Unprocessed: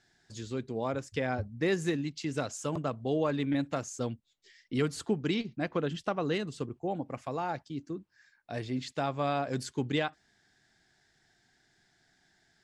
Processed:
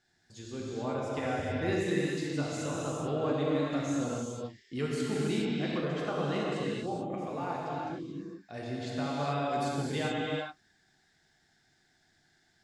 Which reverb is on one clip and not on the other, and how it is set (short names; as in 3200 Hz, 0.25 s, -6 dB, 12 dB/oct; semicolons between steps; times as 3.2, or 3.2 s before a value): non-linear reverb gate 0.46 s flat, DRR -5.5 dB; gain -6.5 dB